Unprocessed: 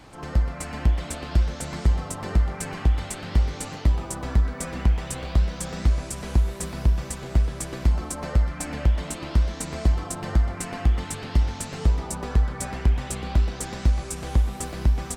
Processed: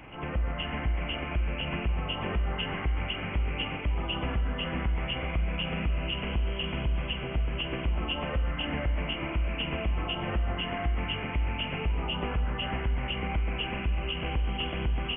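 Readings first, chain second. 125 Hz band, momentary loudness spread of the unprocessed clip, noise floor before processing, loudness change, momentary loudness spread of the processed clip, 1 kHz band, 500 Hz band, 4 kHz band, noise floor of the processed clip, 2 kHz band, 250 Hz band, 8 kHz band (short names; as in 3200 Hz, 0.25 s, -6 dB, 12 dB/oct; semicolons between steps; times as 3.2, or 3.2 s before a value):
-7.0 dB, 3 LU, -37 dBFS, -5.5 dB, 1 LU, -1.0 dB, -1.5 dB, +7.0 dB, -35 dBFS, +3.5 dB, -3.5 dB, under -40 dB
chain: nonlinear frequency compression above 2000 Hz 4:1; limiter -22 dBFS, peak gain reduction 11 dB; Schroeder reverb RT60 1.5 s, combs from 33 ms, DRR 10.5 dB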